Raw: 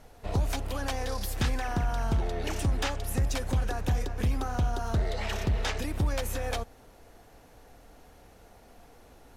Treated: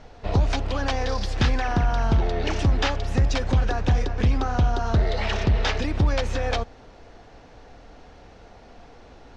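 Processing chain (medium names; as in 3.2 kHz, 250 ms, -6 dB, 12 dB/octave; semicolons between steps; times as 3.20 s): low-pass 5.6 kHz 24 dB/octave; trim +7 dB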